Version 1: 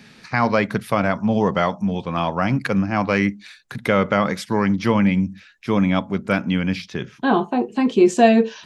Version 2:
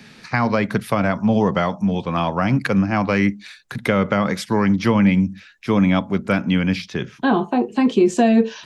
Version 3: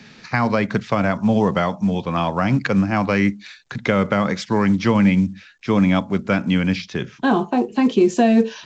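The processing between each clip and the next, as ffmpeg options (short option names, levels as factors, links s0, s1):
-filter_complex "[0:a]acrossover=split=280[s0][s1];[s1]acompressor=threshold=0.112:ratio=5[s2];[s0][s2]amix=inputs=2:normalize=0,volume=1.33"
-ar 16000 -c:a pcm_alaw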